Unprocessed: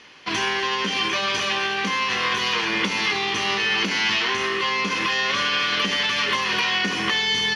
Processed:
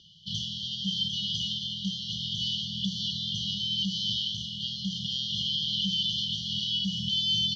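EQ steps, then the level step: brick-wall FIR band-stop 190–2900 Hz; distance through air 180 m; peaking EQ 350 Hz +14.5 dB 1.5 oct; +1.0 dB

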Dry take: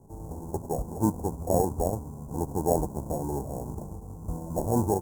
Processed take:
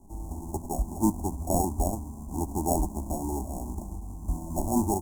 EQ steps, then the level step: bass shelf 160 Hz +9.5 dB; peaking EQ 7.4 kHz +5 dB 2 oct; static phaser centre 480 Hz, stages 6; 0.0 dB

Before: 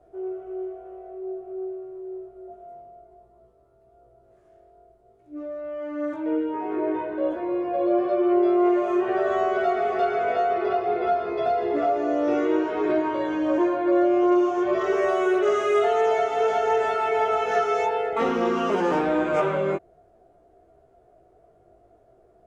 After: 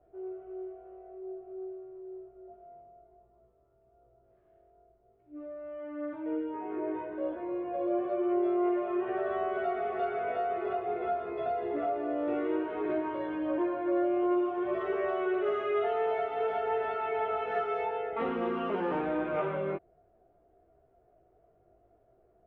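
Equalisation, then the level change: low-pass 3.2 kHz 24 dB/octave; bass shelf 170 Hz +3 dB; -9.0 dB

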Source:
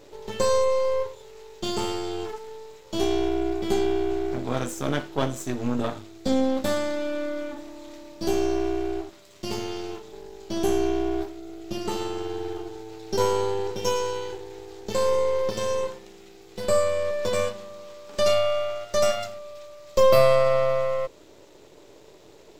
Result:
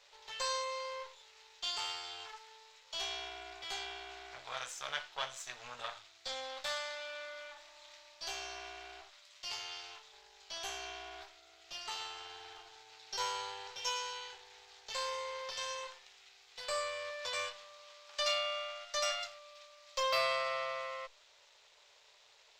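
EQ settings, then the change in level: three-band isolator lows -19 dB, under 480 Hz, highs -19 dB, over 6.1 kHz; amplifier tone stack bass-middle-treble 10-0-10; 0.0 dB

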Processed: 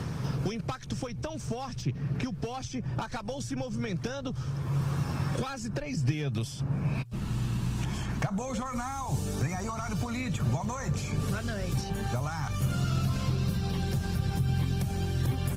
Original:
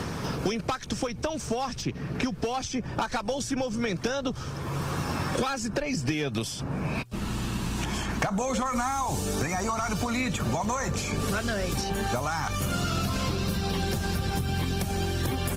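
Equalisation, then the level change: bass shelf 86 Hz +5.5 dB; peaking EQ 130 Hz +11.5 dB 0.78 oct; -7.5 dB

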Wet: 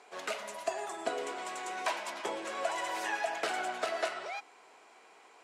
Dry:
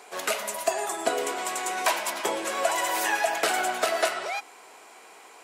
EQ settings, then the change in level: distance through air 64 m; -8.0 dB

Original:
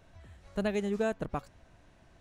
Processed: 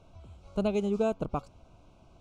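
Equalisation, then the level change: Butterworth band-stop 1.8 kHz, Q 1.8; distance through air 52 m; peaking EQ 3.6 kHz -2.5 dB; +3.0 dB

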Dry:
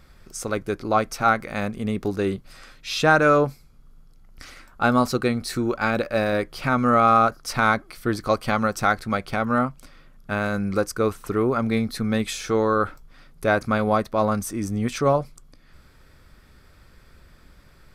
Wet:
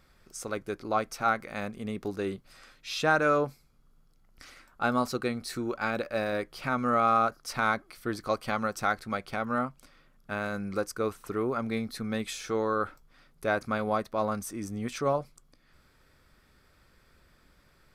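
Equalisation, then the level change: bass shelf 160 Hz -6.5 dB; -7.0 dB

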